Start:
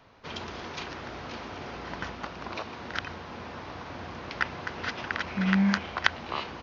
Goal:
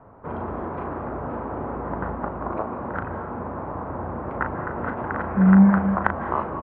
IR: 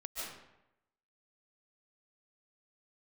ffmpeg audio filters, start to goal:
-filter_complex "[0:a]lowpass=f=1.2k:w=0.5412,lowpass=f=1.2k:w=1.3066,asplit=2[a][b];[b]adelay=37,volume=-8dB[c];[a][c]amix=inputs=2:normalize=0,asplit=2[d][e];[1:a]atrim=start_sample=2205,asetrate=37485,aresample=44100[f];[e][f]afir=irnorm=-1:irlink=0,volume=-7.5dB[g];[d][g]amix=inputs=2:normalize=0,volume=7.5dB"

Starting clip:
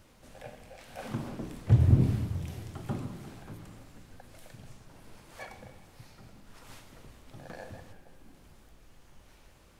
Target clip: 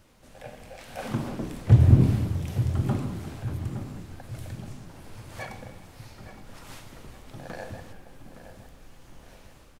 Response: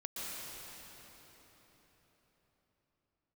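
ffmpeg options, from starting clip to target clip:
-filter_complex "[0:a]dynaudnorm=f=320:g=3:m=6dB,asplit=2[a][b];[b]adelay=865,lowpass=f=2k:p=1,volume=-10.5dB,asplit=2[c][d];[d]adelay=865,lowpass=f=2k:p=1,volume=0.46,asplit=2[e][f];[f]adelay=865,lowpass=f=2k:p=1,volume=0.46,asplit=2[g][h];[h]adelay=865,lowpass=f=2k:p=1,volume=0.46,asplit=2[i][j];[j]adelay=865,lowpass=f=2k:p=1,volume=0.46[k];[a][c][e][g][i][k]amix=inputs=6:normalize=0"

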